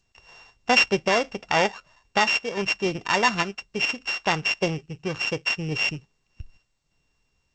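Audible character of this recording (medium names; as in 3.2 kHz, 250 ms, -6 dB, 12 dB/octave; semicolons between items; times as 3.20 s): a buzz of ramps at a fixed pitch in blocks of 16 samples; random-step tremolo; G.722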